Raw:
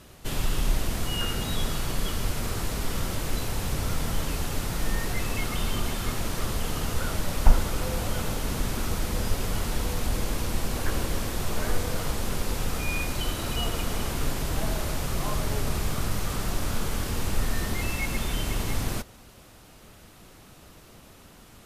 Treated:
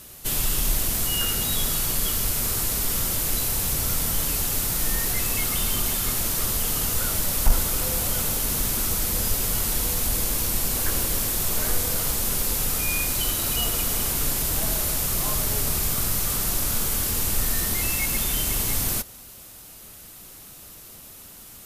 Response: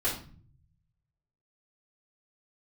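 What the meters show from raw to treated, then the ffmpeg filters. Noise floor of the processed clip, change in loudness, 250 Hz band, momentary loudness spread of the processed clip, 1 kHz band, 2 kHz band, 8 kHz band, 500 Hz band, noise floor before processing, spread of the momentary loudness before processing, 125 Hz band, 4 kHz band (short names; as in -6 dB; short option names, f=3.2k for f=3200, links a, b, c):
-44 dBFS, +7.5 dB, -1.0 dB, 18 LU, 0.0 dB, +2.0 dB, +12.0 dB, -1.0 dB, -51 dBFS, 2 LU, -1.0 dB, +5.5 dB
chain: -af "acontrast=23,aemphasis=mode=production:type=75fm,volume=-5dB"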